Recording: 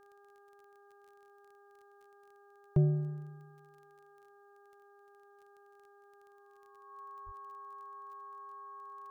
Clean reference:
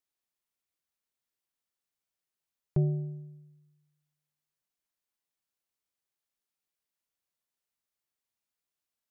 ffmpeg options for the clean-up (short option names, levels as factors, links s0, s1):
-filter_complex "[0:a]adeclick=t=4,bandreject=f=403.8:t=h:w=4,bandreject=f=807.6:t=h:w=4,bandreject=f=1211.4:t=h:w=4,bandreject=f=1615.2:t=h:w=4,bandreject=f=1100:w=30,asplit=3[s0][s1][s2];[s0]afade=t=out:st=7.25:d=0.02[s3];[s1]highpass=f=140:w=0.5412,highpass=f=140:w=1.3066,afade=t=in:st=7.25:d=0.02,afade=t=out:st=7.37:d=0.02[s4];[s2]afade=t=in:st=7.37:d=0.02[s5];[s3][s4][s5]amix=inputs=3:normalize=0"